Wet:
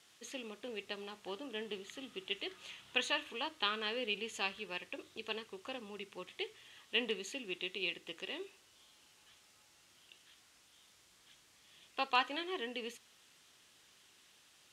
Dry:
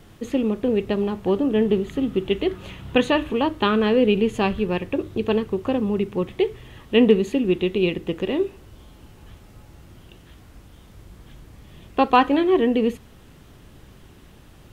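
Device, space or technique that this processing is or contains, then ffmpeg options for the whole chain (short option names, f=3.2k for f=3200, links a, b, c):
piezo pickup straight into a mixer: -af "lowpass=6.5k,aderivative,volume=1dB"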